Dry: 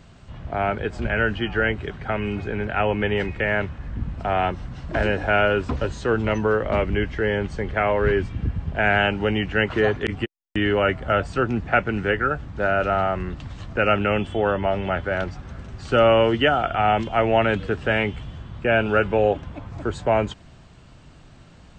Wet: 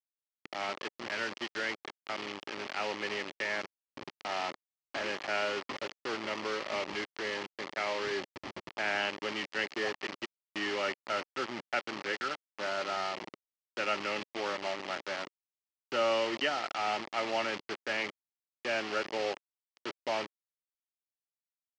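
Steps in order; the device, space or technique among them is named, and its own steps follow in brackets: hand-held game console (bit crusher 4-bit; cabinet simulation 470–4600 Hz, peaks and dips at 470 Hz -9 dB, 700 Hz -8 dB, 1 kHz -4 dB, 1.5 kHz -9 dB, 2.5 kHz -3 dB, 3.7 kHz -7 dB); trim -6 dB

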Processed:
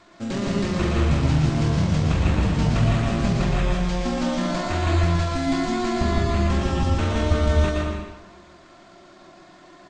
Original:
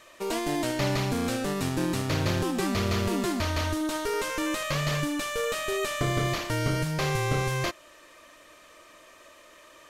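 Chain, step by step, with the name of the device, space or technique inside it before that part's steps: monster voice (pitch shift -9.5 st; bass shelf 240 Hz +5 dB; delay 119 ms -7 dB; reverberation RT60 1.2 s, pre-delay 106 ms, DRR -0.5 dB)

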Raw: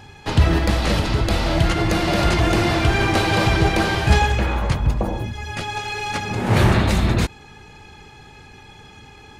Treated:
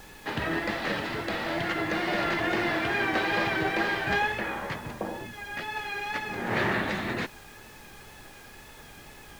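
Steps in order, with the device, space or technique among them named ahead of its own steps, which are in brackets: horn gramophone (band-pass 230–3900 Hz; peaking EQ 1.8 kHz +8.5 dB 0.41 oct; wow and flutter; pink noise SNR 19 dB); trim -8 dB

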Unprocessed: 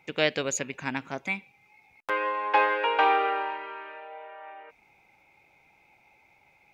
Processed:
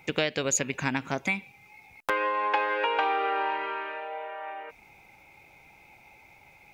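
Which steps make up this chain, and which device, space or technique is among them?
ASMR close-microphone chain (bass shelf 130 Hz +6.5 dB; compression 6:1, threshold -30 dBFS, peak gain reduction 12.5 dB; treble shelf 6.9 kHz +7 dB); trim +6 dB

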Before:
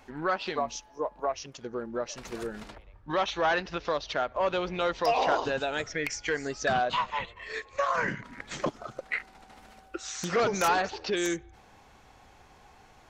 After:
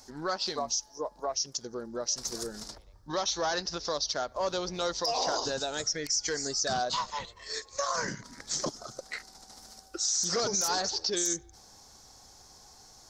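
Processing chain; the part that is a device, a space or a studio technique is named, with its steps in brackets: over-bright horn tweeter (resonant high shelf 3.7 kHz +12.5 dB, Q 3; peak limiter -16.5 dBFS, peak gain reduction 10.5 dB); trim -3 dB

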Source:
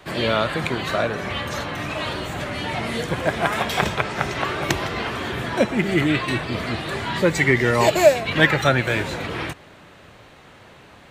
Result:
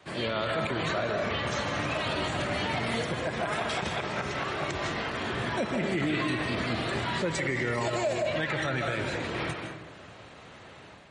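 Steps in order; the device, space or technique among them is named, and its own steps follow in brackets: high-pass 57 Hz 12 dB/octave; 0.44–0.89 s: dynamic bell 5 kHz, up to -3 dB, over -50 dBFS, Q 2.4; algorithmic reverb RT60 0.89 s, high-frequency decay 0.55×, pre-delay 115 ms, DRR 5.5 dB; low-bitrate web radio (level rider gain up to 6 dB; peak limiter -12 dBFS, peak gain reduction 10.5 dB; trim -8 dB; MP3 40 kbps 44.1 kHz)

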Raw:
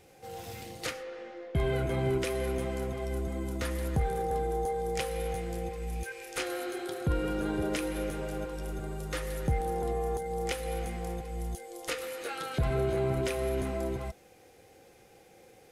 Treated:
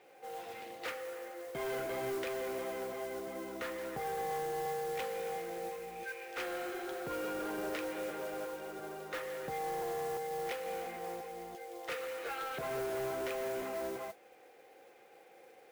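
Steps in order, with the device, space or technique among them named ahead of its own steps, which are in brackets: carbon microphone (band-pass 440–2600 Hz; saturation -34 dBFS, distortion -13 dB; modulation noise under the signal 15 dB); trim +1 dB

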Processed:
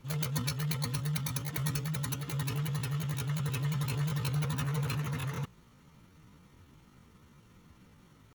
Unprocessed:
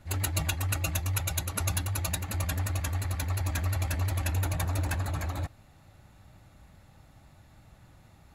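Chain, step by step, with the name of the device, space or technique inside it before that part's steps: chipmunk voice (pitch shift +8 st); trim -3 dB

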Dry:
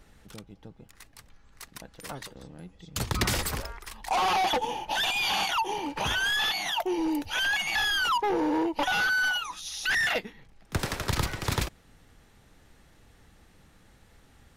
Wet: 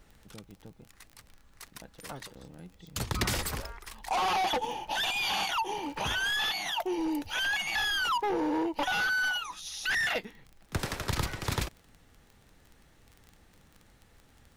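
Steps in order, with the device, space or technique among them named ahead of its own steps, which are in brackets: vinyl LP (crackle 25 per s -37 dBFS; pink noise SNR 40 dB); trim -3 dB

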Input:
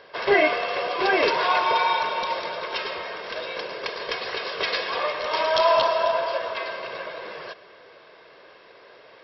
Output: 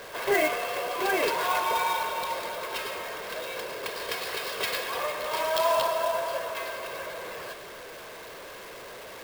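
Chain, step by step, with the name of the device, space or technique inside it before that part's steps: 3.95–4.73 s: treble shelf 4.2 kHz +5.5 dB; early CD player with a faulty converter (jump at every zero crossing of -32.5 dBFS; sampling jitter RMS 0.025 ms); trim -6 dB

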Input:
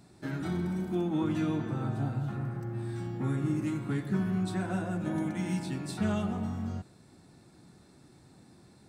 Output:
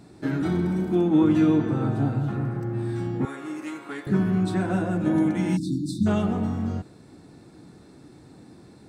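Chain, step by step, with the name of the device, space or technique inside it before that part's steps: inside a helmet (treble shelf 5.2 kHz -5.5 dB; small resonant body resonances 300/450 Hz, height 6 dB, ringing for 35 ms); 3.25–4.07 s: high-pass 680 Hz 12 dB/octave; 5.57–6.07 s: spectral selection erased 360–3500 Hz; trim +6.5 dB

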